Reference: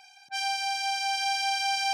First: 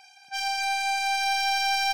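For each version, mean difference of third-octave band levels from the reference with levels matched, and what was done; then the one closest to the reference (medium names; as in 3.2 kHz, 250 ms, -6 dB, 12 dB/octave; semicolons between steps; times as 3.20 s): 1.5 dB: tracing distortion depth 0.021 ms; band-stop 3.4 kHz, Q 9.3; on a send: delay 246 ms -3.5 dB; on the sum: trim +1 dB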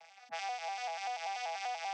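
10.5 dB: vocoder on a broken chord minor triad, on E3, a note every 97 ms; compression 4:1, threshold -38 dBFS, peak gain reduction 11 dB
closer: first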